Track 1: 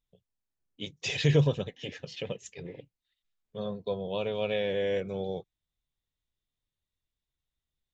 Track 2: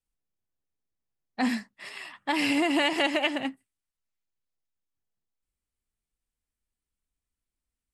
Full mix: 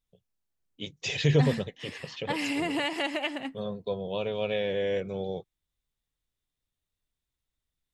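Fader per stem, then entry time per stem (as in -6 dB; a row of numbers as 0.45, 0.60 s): +0.5, -5.0 dB; 0.00, 0.00 s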